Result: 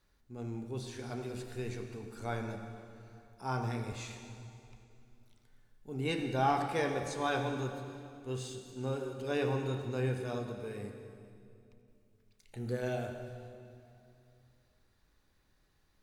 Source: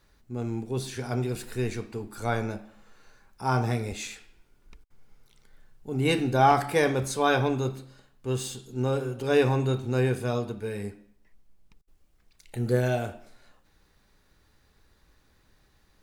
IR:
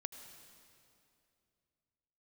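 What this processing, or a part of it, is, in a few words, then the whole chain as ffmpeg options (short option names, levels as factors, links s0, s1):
stairwell: -filter_complex "[0:a]acrossover=split=8600[s0][s1];[s1]acompressor=threshold=0.00141:ratio=4:attack=1:release=60[s2];[s0][s2]amix=inputs=2:normalize=0[s3];[1:a]atrim=start_sample=2205[s4];[s3][s4]afir=irnorm=-1:irlink=0,bandreject=f=61.86:t=h:w=4,bandreject=f=123.72:t=h:w=4,bandreject=f=185.58:t=h:w=4,bandreject=f=247.44:t=h:w=4,bandreject=f=309.3:t=h:w=4,bandreject=f=371.16:t=h:w=4,bandreject=f=433.02:t=h:w=4,bandreject=f=494.88:t=h:w=4,bandreject=f=556.74:t=h:w=4,bandreject=f=618.6:t=h:w=4,bandreject=f=680.46:t=h:w=4,bandreject=f=742.32:t=h:w=4,bandreject=f=804.18:t=h:w=4,bandreject=f=866.04:t=h:w=4,bandreject=f=927.9:t=h:w=4,bandreject=f=989.76:t=h:w=4,bandreject=f=1051.62:t=h:w=4,bandreject=f=1113.48:t=h:w=4,bandreject=f=1175.34:t=h:w=4,bandreject=f=1237.2:t=h:w=4,bandreject=f=1299.06:t=h:w=4,bandreject=f=1360.92:t=h:w=4,bandreject=f=1422.78:t=h:w=4,bandreject=f=1484.64:t=h:w=4,bandreject=f=1546.5:t=h:w=4,bandreject=f=1608.36:t=h:w=4,bandreject=f=1670.22:t=h:w=4,bandreject=f=1732.08:t=h:w=4,bandreject=f=1793.94:t=h:w=4,bandreject=f=1855.8:t=h:w=4,bandreject=f=1917.66:t=h:w=4,bandreject=f=1979.52:t=h:w=4,bandreject=f=2041.38:t=h:w=4,bandreject=f=2103.24:t=h:w=4,bandreject=f=2165.1:t=h:w=4,bandreject=f=2226.96:t=h:w=4,bandreject=f=2288.82:t=h:w=4,volume=0.531"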